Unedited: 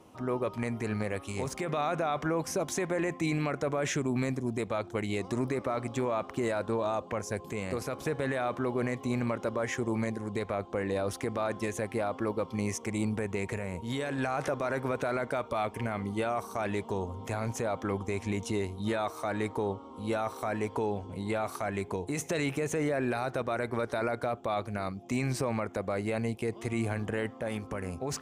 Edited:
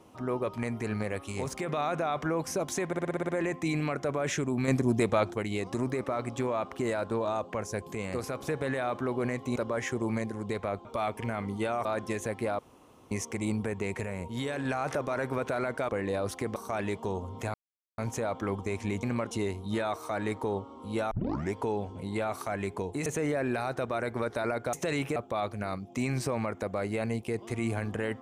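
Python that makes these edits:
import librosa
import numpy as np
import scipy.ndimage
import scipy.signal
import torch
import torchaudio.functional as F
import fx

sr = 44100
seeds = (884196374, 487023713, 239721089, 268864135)

y = fx.edit(x, sr, fx.stutter(start_s=2.87, slice_s=0.06, count=8),
    fx.clip_gain(start_s=4.26, length_s=0.66, db=6.5),
    fx.move(start_s=9.14, length_s=0.28, to_s=18.45),
    fx.swap(start_s=10.71, length_s=0.67, other_s=15.42, other_length_s=1.0),
    fx.room_tone_fill(start_s=12.12, length_s=0.52),
    fx.insert_silence(at_s=17.4, length_s=0.44),
    fx.tape_start(start_s=20.25, length_s=0.42),
    fx.move(start_s=22.2, length_s=0.43, to_s=24.3), tone=tone)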